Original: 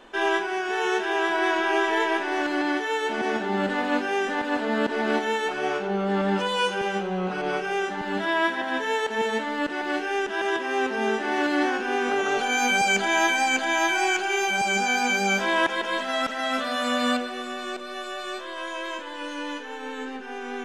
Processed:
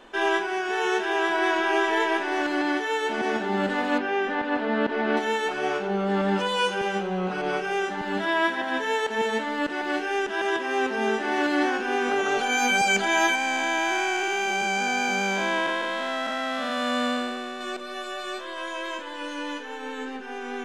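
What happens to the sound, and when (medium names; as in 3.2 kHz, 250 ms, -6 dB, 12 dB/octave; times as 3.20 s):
3.98–5.17 s: low-pass 3.3 kHz
13.35–17.61 s: spectral blur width 298 ms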